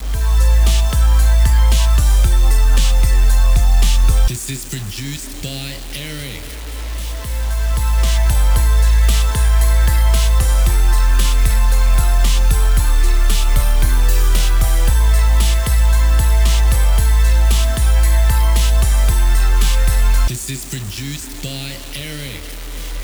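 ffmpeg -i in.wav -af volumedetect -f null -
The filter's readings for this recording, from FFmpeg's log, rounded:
mean_volume: -12.2 dB
max_volume: -3.0 dB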